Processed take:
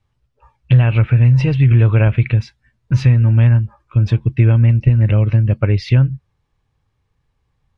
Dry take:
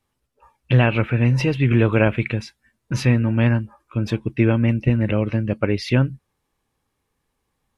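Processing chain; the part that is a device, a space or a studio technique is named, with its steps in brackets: jukebox (LPF 5400 Hz 12 dB/oct; resonant low shelf 170 Hz +9.5 dB, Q 1.5; compressor 3:1, threshold -10 dBFS, peak gain reduction 7.5 dB); gain +1 dB

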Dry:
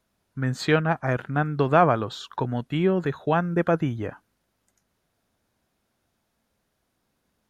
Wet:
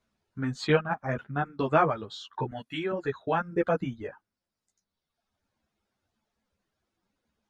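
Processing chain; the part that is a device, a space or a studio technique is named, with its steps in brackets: reverb removal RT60 1.5 s; 2.51–2.92 tilt +2.5 dB/oct; string-machine ensemble chorus (ensemble effect; LPF 7100 Hz 12 dB/oct)

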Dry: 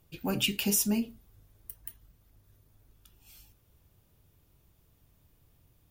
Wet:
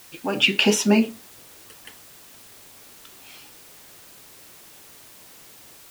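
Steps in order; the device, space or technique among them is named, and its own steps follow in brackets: dictaphone (BPF 320–3300 Hz; AGC gain up to 11 dB; wow and flutter; white noise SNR 20 dB); gain +7 dB

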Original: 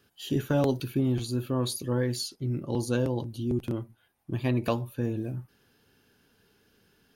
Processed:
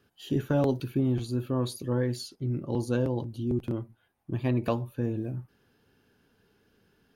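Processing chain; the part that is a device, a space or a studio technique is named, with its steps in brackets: behind a face mask (high shelf 2600 Hz -8 dB)

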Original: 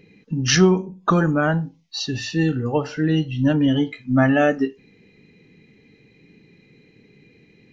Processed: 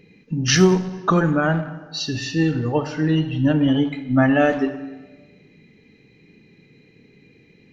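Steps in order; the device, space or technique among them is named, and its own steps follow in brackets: saturated reverb return (on a send at -8.5 dB: reverb RT60 1.2 s, pre-delay 34 ms + soft clip -14.5 dBFS, distortion -12 dB); 3.11–4.46 on the sum: bell 6300 Hz -6 dB 0.49 oct

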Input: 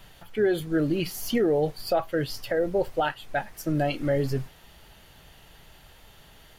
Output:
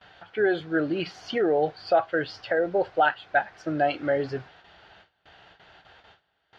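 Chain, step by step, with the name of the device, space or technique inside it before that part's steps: gate with hold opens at -41 dBFS; guitar cabinet (speaker cabinet 110–4500 Hz, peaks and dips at 140 Hz -9 dB, 230 Hz -9 dB, 740 Hz +7 dB, 1500 Hz +9 dB)

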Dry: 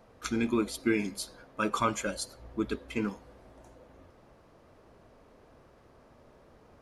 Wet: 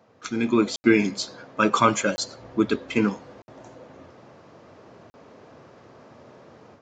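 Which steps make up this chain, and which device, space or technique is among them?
call with lost packets (HPF 100 Hz 24 dB/oct; downsampling 16000 Hz; AGC gain up to 10 dB; packet loss bursts)

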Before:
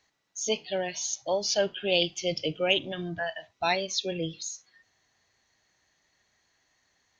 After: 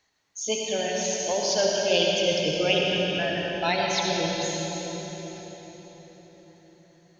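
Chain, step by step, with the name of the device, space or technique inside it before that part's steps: cathedral (reverb RT60 4.8 s, pre-delay 62 ms, DRR -2.5 dB)

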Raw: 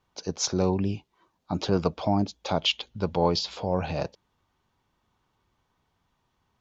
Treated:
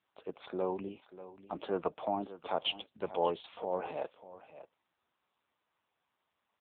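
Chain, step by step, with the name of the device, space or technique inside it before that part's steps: 0.51–2.17 expander -59 dBFS; satellite phone (BPF 390–3400 Hz; echo 0.589 s -14.5 dB; gain -4.5 dB; AMR-NB 6.7 kbps 8000 Hz)

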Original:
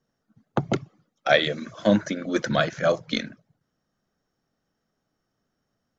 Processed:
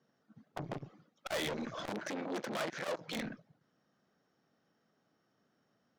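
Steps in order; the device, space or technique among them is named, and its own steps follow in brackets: valve radio (BPF 150–4900 Hz; tube stage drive 34 dB, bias 0.25; core saturation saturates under 460 Hz); 1.89–3.13 HPF 190 Hz 12 dB/oct; gain +3 dB

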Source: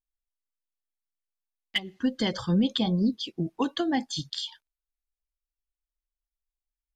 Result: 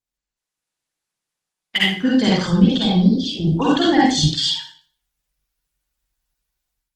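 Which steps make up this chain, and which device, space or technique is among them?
far-field microphone of a smart speaker (reverb RT60 0.45 s, pre-delay 44 ms, DRR -6.5 dB; HPF 100 Hz 6 dB/oct; AGC gain up to 10.5 dB; gain -1 dB; Opus 16 kbps 48000 Hz)

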